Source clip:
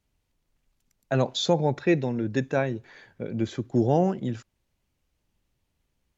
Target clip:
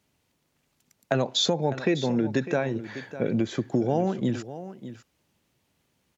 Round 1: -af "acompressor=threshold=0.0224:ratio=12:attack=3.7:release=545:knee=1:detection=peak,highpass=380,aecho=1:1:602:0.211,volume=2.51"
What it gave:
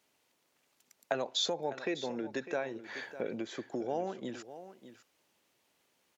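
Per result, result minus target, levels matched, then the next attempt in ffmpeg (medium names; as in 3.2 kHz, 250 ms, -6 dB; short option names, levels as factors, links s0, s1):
125 Hz band -11.5 dB; compression: peak gain reduction +7.5 dB
-af "acompressor=threshold=0.0224:ratio=12:attack=3.7:release=545:knee=1:detection=peak,highpass=130,aecho=1:1:602:0.211,volume=2.51"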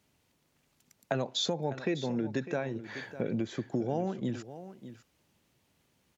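compression: peak gain reduction +7.5 dB
-af "acompressor=threshold=0.0562:ratio=12:attack=3.7:release=545:knee=1:detection=peak,highpass=130,aecho=1:1:602:0.211,volume=2.51"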